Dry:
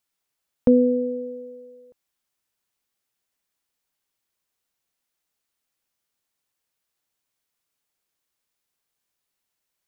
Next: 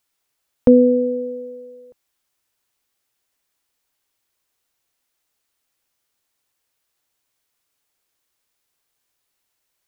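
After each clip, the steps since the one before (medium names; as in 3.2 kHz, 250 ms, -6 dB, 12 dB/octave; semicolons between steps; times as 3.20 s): peaking EQ 190 Hz -8.5 dB 0.32 oct; trim +6 dB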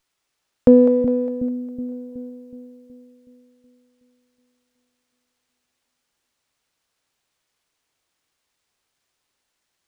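two-band feedback delay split 390 Hz, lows 371 ms, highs 203 ms, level -8 dB; sliding maximum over 3 samples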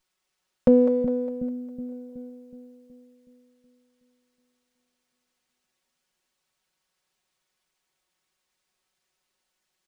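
comb 5.4 ms, depth 77%; trim -5 dB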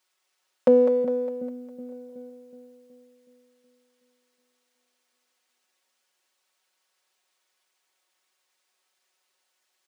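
high-pass 420 Hz 12 dB/octave; trim +4 dB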